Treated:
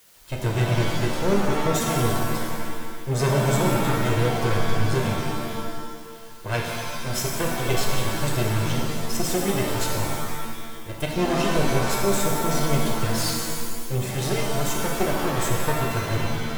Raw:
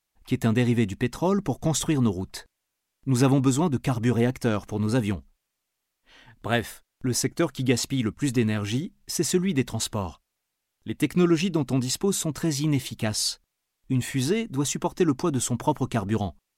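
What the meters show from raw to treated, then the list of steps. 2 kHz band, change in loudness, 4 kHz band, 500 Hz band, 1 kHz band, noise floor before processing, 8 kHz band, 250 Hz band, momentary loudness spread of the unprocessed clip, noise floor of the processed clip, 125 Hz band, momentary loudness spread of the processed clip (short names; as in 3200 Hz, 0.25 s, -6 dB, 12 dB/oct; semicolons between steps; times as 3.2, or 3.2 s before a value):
+5.5 dB, +0.5 dB, +2.5 dB, +3.0 dB, +6.5 dB, -81 dBFS, +1.0 dB, -3.0 dB, 9 LU, -37 dBFS, +2.0 dB, 10 LU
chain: minimum comb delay 1.9 ms; added noise white -54 dBFS; shimmer reverb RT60 1.7 s, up +7 st, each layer -2 dB, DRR -0.5 dB; gain -2 dB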